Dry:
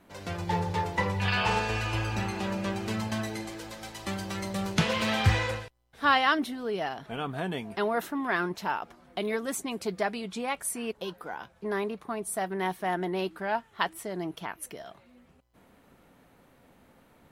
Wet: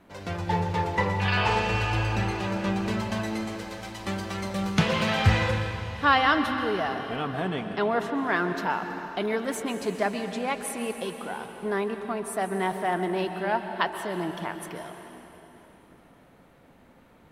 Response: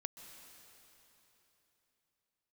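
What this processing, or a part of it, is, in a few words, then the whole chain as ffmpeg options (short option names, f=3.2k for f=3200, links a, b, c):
swimming-pool hall: -filter_complex "[0:a]asettb=1/sr,asplit=3[a][b][c];[a]atrim=end=7.494[d];[b]atrim=start=7.49:end=8.18,asetpts=PTS-STARTPTS,afade=t=in:d=0.004:c=qsin,afade=t=out:st=0.686:d=0.004:c=qsin,lowpass=7.8k[e];[c]atrim=start=8.176[f];[d][e]acrossfade=d=0.004:c1=hsin:c2=qsin[g];[g][f]acrossfade=d=0.004:c1=qsin:c2=hsin[h];[1:a]atrim=start_sample=2205[i];[h][i]afir=irnorm=-1:irlink=0,highshelf=f=5.1k:g=-7,volume=6.5dB"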